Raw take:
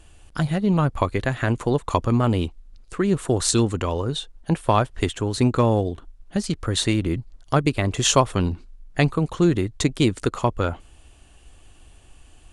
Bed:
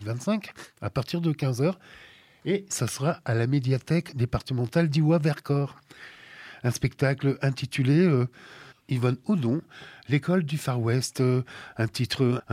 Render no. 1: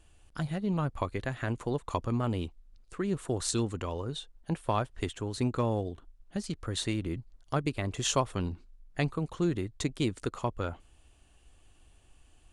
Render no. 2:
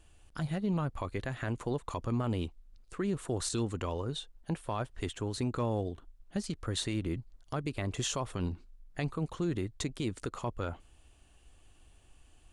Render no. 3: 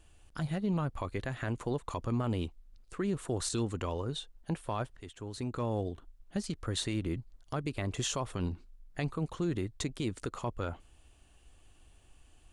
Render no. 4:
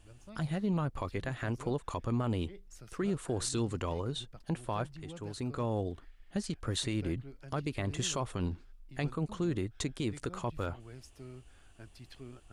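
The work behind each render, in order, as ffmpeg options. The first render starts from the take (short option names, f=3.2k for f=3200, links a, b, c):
-af "volume=-10.5dB"
-af "alimiter=limit=-23.5dB:level=0:latency=1:release=51"
-filter_complex "[0:a]asplit=2[a][b];[a]atrim=end=4.97,asetpts=PTS-STARTPTS,afade=t=out:st=4.966:d=0.004:c=hsin:silence=0.199526[c];[b]atrim=start=4.97,asetpts=PTS-STARTPTS,afade=t=in:d=0.87:silence=0.199526[d];[c][d]concat=n=2:v=0:a=1"
-filter_complex "[1:a]volume=-25.5dB[a];[0:a][a]amix=inputs=2:normalize=0"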